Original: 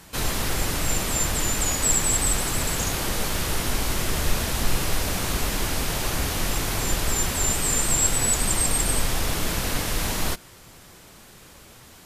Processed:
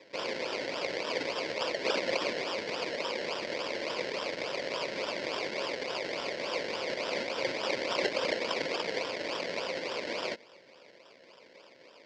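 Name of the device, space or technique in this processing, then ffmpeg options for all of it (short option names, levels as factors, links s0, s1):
circuit-bent sampling toy: -af "equalizer=f=1100:t=o:w=0.77:g=10.5,acrusher=samples=29:mix=1:aa=0.000001:lfo=1:lforange=17.4:lforate=3.5,highpass=450,equalizer=f=530:t=q:w=4:g=7,equalizer=f=790:t=q:w=4:g=-9,equalizer=f=1200:t=q:w=4:g=-8,equalizer=f=2200:t=q:w=4:g=8,equalizer=f=4700:t=q:w=4:g=8,lowpass=f=5600:w=0.5412,lowpass=f=5600:w=1.3066,volume=0.473"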